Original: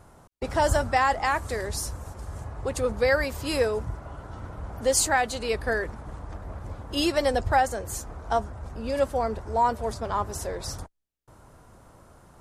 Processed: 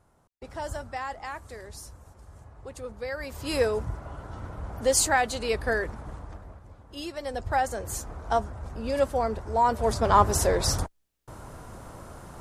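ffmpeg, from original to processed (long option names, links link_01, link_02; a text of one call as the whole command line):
ffmpeg -i in.wav -af "volume=21dB,afade=type=in:start_time=3.16:duration=0.47:silence=0.251189,afade=type=out:start_time=6.05:duration=0.57:silence=0.251189,afade=type=in:start_time=7.22:duration=0.68:silence=0.251189,afade=type=in:start_time=9.65:duration=0.53:silence=0.354813" out.wav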